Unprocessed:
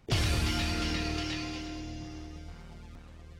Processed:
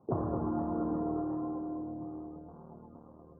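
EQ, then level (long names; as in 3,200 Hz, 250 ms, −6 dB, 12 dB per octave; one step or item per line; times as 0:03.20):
high-pass filter 210 Hz 12 dB per octave
elliptic low-pass filter 1,100 Hz, stop band 50 dB
high-frequency loss of the air 460 metres
+5.5 dB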